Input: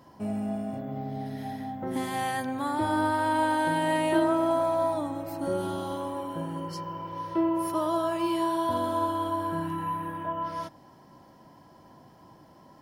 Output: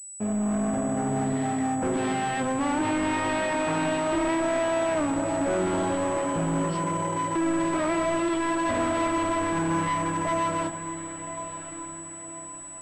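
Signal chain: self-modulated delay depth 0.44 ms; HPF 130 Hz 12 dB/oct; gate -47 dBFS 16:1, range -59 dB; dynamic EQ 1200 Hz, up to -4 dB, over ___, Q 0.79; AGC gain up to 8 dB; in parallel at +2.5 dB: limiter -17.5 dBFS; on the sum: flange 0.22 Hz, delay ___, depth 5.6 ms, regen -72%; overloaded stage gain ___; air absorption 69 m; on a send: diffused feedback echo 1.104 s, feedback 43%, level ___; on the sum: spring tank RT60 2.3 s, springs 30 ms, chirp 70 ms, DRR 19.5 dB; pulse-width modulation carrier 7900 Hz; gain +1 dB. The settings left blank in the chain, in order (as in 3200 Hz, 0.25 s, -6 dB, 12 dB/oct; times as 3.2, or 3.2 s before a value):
-41 dBFS, 8.6 ms, 24.5 dB, -11 dB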